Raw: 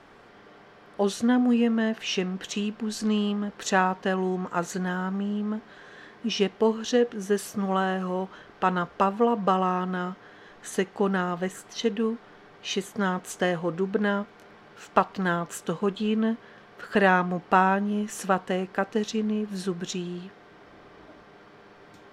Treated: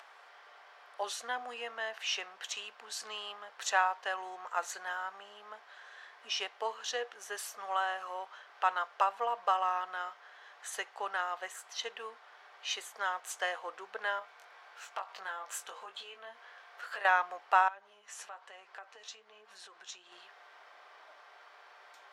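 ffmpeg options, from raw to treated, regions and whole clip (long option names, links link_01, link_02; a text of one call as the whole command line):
ffmpeg -i in.wav -filter_complex "[0:a]asettb=1/sr,asplit=3[link_01][link_02][link_03];[link_01]atrim=end=14.194[link_04];[link_02]atrim=start=14.19:end=17.05,asetpts=PTS-STARTPTS,afade=type=in:duration=0.004:curve=qsin,afade=type=out:start_time=2.856:duration=0.004:curve=qsin,acompressor=threshold=-29dB:ratio=5:attack=3.2:release=140:knee=1:detection=peak,asplit=2[link_05][link_06];[link_06]adelay=21,volume=-5.5dB[link_07];[link_05][link_07]amix=inputs=2:normalize=0,atrim=end_sample=126126[link_08];[link_03]atrim=start=17.046[link_09];[link_04][link_08]acrossfade=duration=0.004:curve1=hsin:curve2=qsin[link_10];[link_10][link_09]acrossfade=duration=0.004:curve1=qsin:curve2=hsin,asettb=1/sr,asplit=3[link_11][link_12][link_13];[link_11]atrim=end=17.684[link_14];[link_12]atrim=start=17.68:end=20.12,asetpts=PTS-STARTPTS,afade=type=in:duration=0.004:curve=qsin,afade=type=out:start_time=2.436:duration=0.004:curve=qsin,lowpass=8600,flanger=delay=4.3:depth=7:regen=48:speed=1.1:shape=sinusoidal,acompressor=threshold=-35dB:ratio=6:attack=3.2:release=140:knee=1:detection=peak[link_15];[link_13]atrim=start=20.116[link_16];[link_14][link_15]acrossfade=duration=0.004:curve1=hsin:curve2=qsin[link_17];[link_17][link_16]acrossfade=duration=0.004:curve1=qsin:curve2=hsin,highpass=frequency=680:width=0.5412,highpass=frequency=680:width=1.3066,acompressor=mode=upward:threshold=-47dB:ratio=2.5,volume=-4dB" out.wav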